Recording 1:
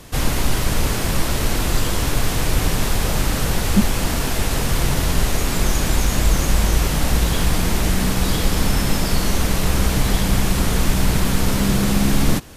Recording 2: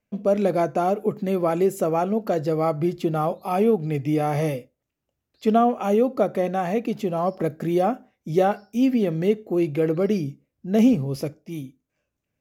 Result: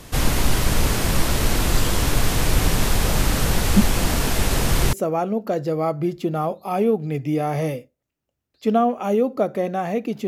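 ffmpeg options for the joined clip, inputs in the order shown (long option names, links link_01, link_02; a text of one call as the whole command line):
ffmpeg -i cue0.wav -i cue1.wav -filter_complex "[1:a]asplit=2[link_01][link_02];[0:a]apad=whole_dur=10.27,atrim=end=10.27,atrim=end=4.932[link_03];[link_02]atrim=start=1.728:end=7.07[link_04];[link_01]atrim=start=0.74:end=1.73,asetpts=PTS-STARTPTS,volume=-16dB,afade=type=in:duration=0.004:curve=hsin,afade=type=out:start_time=0.986:duration=0.004:curve=hsin,adelay=3940[link_05];[link_03][link_04]acrossfade=duration=0.004:curve1=hsin:curve2=hsin[link_06];[link_06][link_05]amix=inputs=2:normalize=0" out.wav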